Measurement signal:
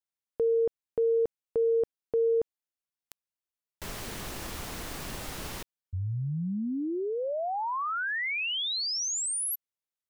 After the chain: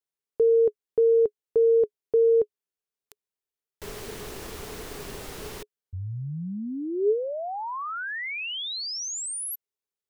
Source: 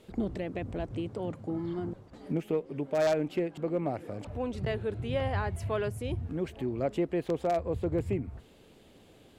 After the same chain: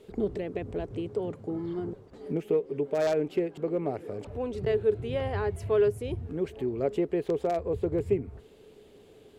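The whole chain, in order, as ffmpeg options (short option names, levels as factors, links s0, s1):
-af "equalizer=f=420:w=5.1:g=13.5,volume=0.841"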